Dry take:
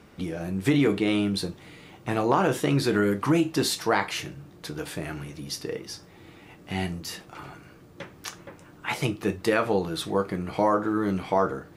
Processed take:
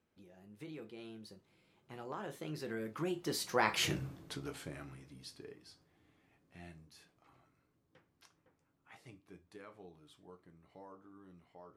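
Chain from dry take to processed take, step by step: Doppler pass-by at 3.95, 29 m/s, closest 3.7 m; gain +2 dB

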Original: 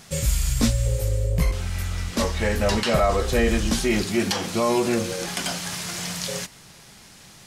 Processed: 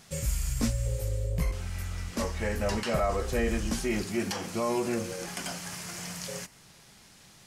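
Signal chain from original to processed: dynamic EQ 3700 Hz, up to -7 dB, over -47 dBFS, Q 2.7; gain -7.5 dB

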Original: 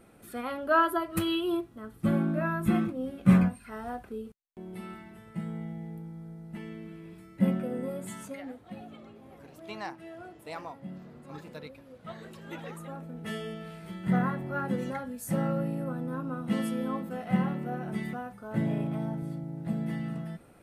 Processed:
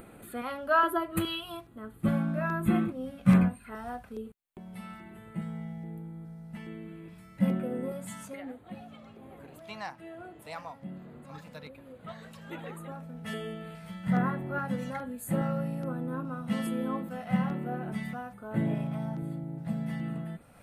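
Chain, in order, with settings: upward compressor, threshold -43 dBFS; LFO notch square 1.2 Hz 360–5500 Hz

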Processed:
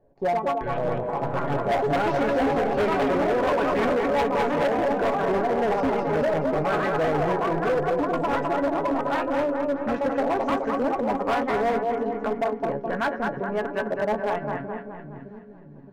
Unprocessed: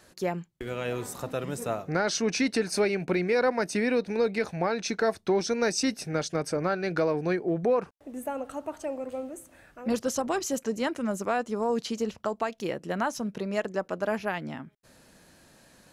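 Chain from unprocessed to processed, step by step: G.711 law mismatch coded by A; low shelf 65 Hz +12 dB; notch 1300 Hz, Q 6.2; de-hum 169.9 Hz, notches 3; echoes that change speed 0.155 s, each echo +4 st, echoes 2; LFO low-pass saw up 1.3 Hz 560–1800 Hz; resonator 140 Hz, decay 0.16 s, harmonics all, mix 80%; split-band echo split 350 Hz, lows 0.617 s, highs 0.211 s, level -4.5 dB; hard clip -28.5 dBFS, distortion -9 dB; gain +9 dB

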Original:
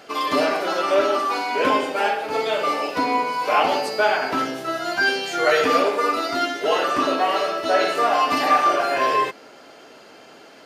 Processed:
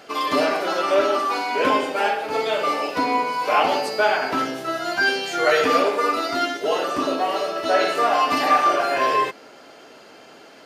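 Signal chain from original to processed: 6.57–7.56 bell 1800 Hz -6 dB 1.8 oct

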